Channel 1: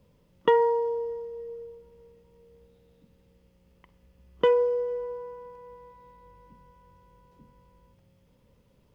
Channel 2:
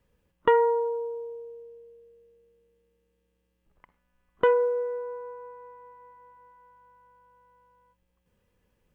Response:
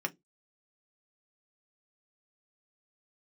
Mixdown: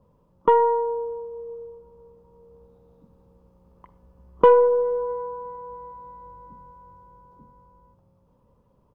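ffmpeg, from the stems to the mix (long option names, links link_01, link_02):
-filter_complex "[0:a]highshelf=frequency=1500:width_type=q:width=3:gain=-11.5,volume=0.5dB[link_01];[1:a]highpass=frequency=1200:width=0.5412,highpass=frequency=1200:width=1.3066,adelay=18,volume=-10dB[link_02];[link_01][link_02]amix=inputs=2:normalize=0,dynaudnorm=framelen=250:gausssize=17:maxgain=5.5dB,aeval=exprs='0.668*(cos(1*acos(clip(val(0)/0.668,-1,1)))-cos(1*PI/2))+0.0299*(cos(4*acos(clip(val(0)/0.668,-1,1)))-cos(4*PI/2))':channel_layout=same"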